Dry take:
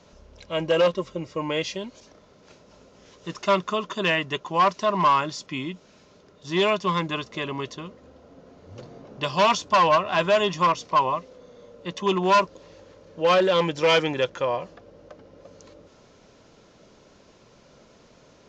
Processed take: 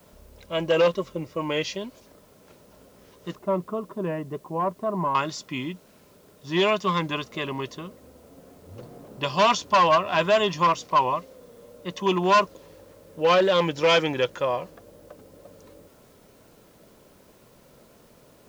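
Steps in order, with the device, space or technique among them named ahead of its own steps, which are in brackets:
0:03.35–0:05.15: Bessel low-pass filter 600 Hz, order 2
plain cassette with noise reduction switched in (one half of a high-frequency compander decoder only; tape wow and flutter; white noise bed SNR 36 dB)

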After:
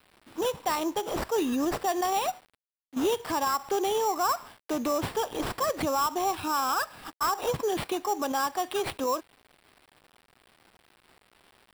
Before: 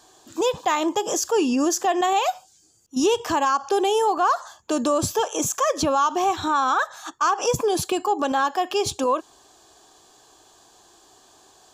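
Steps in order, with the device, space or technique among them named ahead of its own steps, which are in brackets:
early 8-bit sampler (sample-rate reduction 6,500 Hz, jitter 0%; bit reduction 8 bits)
level −6.5 dB

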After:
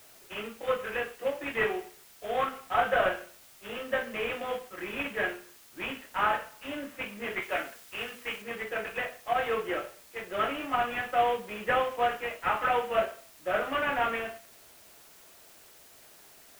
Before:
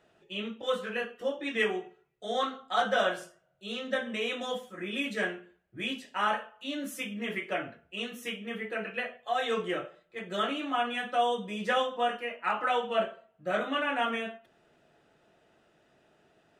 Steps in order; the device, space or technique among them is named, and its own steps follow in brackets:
army field radio (band-pass filter 360–3,200 Hz; variable-slope delta modulation 16 kbit/s; white noise bed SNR 23 dB)
0:07.42–0:08.42: tilt shelving filter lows −3 dB
level +2.5 dB

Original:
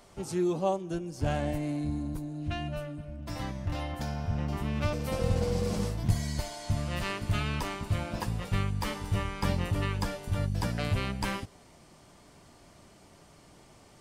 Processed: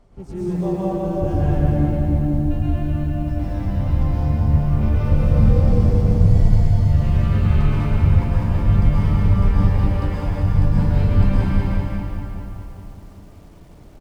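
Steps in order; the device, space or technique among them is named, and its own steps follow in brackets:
reverb reduction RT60 0.6 s
0:09.48–0:10.26: Butterworth high-pass 300 Hz 36 dB per octave
cave (single-tap delay 370 ms −11 dB; convolution reverb RT60 3.2 s, pre-delay 105 ms, DRR −9 dB)
spectral tilt −3.5 dB per octave
feedback echo at a low word length 197 ms, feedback 55%, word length 8 bits, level −5 dB
level −6 dB

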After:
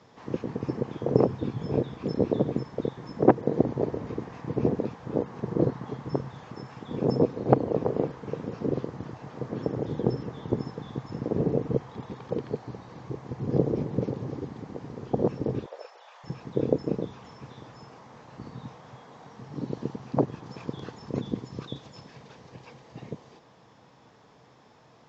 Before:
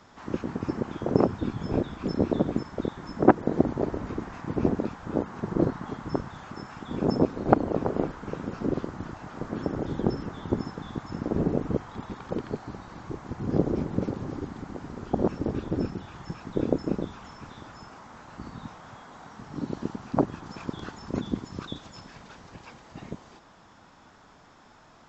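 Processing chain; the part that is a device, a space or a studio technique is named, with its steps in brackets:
car door speaker (loudspeaker in its box 86–6,700 Hz, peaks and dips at 130 Hz +9 dB, 470 Hz +8 dB, 1,400 Hz −7 dB)
0:15.66–0:16.24: elliptic high-pass filter 570 Hz, stop band 60 dB
level −2.5 dB

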